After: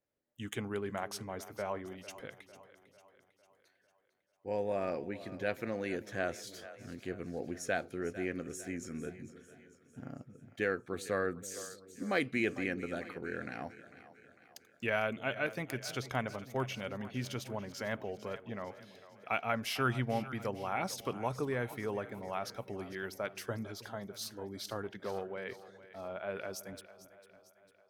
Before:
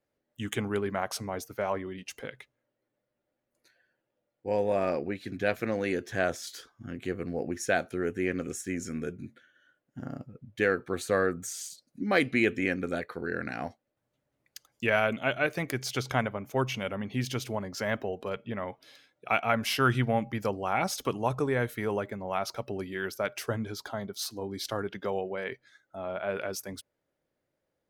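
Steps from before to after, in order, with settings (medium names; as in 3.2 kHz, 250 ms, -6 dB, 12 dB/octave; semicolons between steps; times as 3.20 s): 24.83–25.34 s: self-modulated delay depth 0.12 ms; two-band feedback delay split 450 Hz, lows 318 ms, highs 450 ms, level -15 dB; trim -7 dB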